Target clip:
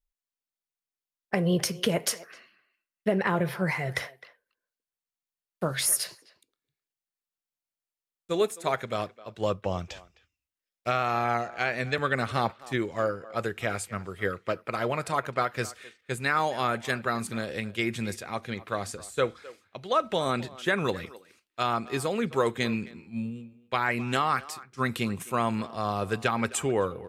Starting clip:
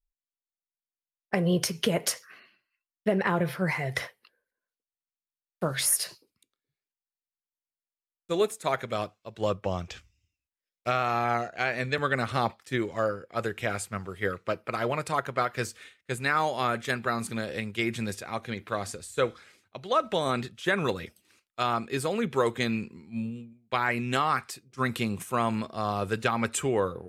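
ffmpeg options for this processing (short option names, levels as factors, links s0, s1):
-filter_complex "[0:a]asplit=2[s0][s1];[s1]adelay=260,highpass=300,lowpass=3400,asoftclip=type=hard:threshold=0.126,volume=0.126[s2];[s0][s2]amix=inputs=2:normalize=0"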